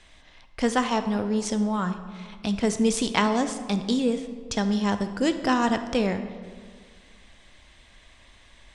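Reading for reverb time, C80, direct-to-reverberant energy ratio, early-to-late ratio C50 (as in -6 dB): 1.8 s, 11.5 dB, 9.0 dB, 10.0 dB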